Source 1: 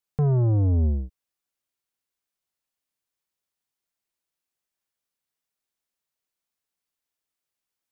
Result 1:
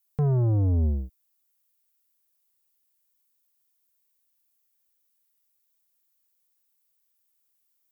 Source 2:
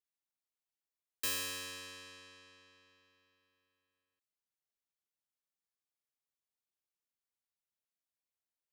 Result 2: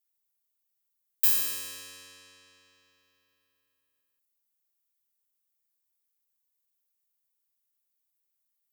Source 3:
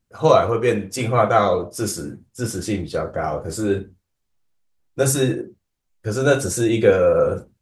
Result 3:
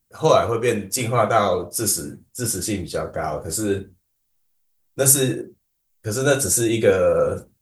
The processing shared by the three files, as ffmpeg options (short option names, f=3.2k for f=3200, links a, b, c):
-af "aemphasis=mode=production:type=50fm,volume=-1.5dB"